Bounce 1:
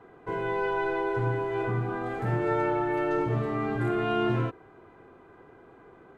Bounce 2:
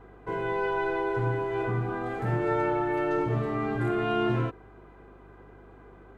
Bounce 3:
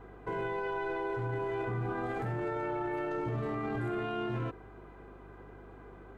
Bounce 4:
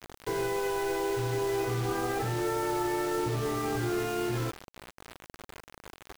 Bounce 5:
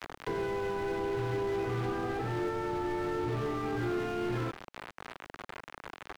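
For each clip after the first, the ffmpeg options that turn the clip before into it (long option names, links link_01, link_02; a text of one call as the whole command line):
ffmpeg -i in.wav -af "aeval=exprs='val(0)+0.00224*(sin(2*PI*50*n/s)+sin(2*PI*2*50*n/s)/2+sin(2*PI*3*50*n/s)/3+sin(2*PI*4*50*n/s)/4+sin(2*PI*5*50*n/s)/5)':channel_layout=same" out.wav
ffmpeg -i in.wav -af "alimiter=level_in=3.5dB:limit=-24dB:level=0:latency=1:release=17,volume=-3.5dB" out.wav
ffmpeg -i in.wav -af "aecho=1:1:2.4:0.38,acrusher=bits=6:mix=0:aa=0.000001,volume=3dB" out.wav
ffmpeg -i in.wav -filter_complex "[0:a]tiltshelf=frequency=760:gain=-5,asplit=2[link_01][link_02];[link_02]highpass=frequency=720:poles=1,volume=20dB,asoftclip=type=tanh:threshold=-19.5dB[link_03];[link_01][link_03]amix=inputs=2:normalize=0,lowpass=frequency=1100:poles=1,volume=-6dB,acrossover=split=330[link_04][link_05];[link_05]acompressor=threshold=-48dB:ratio=3[link_06];[link_04][link_06]amix=inputs=2:normalize=0,volume=5.5dB" out.wav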